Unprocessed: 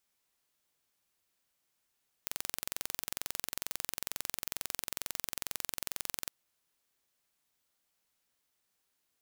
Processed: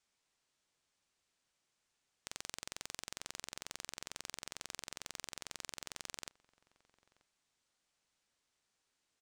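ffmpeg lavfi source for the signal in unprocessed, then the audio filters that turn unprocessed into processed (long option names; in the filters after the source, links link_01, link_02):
-f lavfi -i "aevalsrc='0.422*eq(mod(n,1986),0)':duration=4.05:sample_rate=44100"
-filter_complex "[0:a]lowpass=frequency=8500:width=0.5412,lowpass=frequency=8500:width=1.3066,asoftclip=type=tanh:threshold=-20.5dB,asplit=2[link_01][link_02];[link_02]adelay=932.9,volume=-22dB,highshelf=frequency=4000:gain=-21[link_03];[link_01][link_03]amix=inputs=2:normalize=0"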